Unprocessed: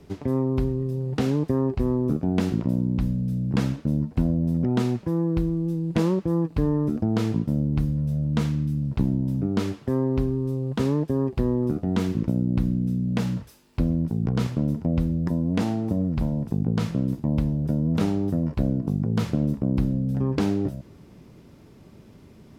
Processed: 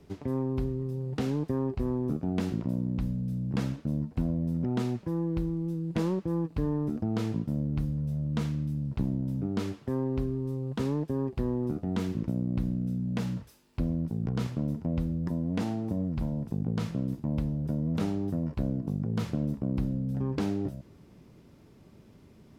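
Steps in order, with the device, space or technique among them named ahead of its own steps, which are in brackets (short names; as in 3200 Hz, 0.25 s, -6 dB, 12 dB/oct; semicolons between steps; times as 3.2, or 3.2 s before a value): parallel distortion (in parallel at -11 dB: hard clip -21.5 dBFS, distortion -11 dB); on the sum: gain -8 dB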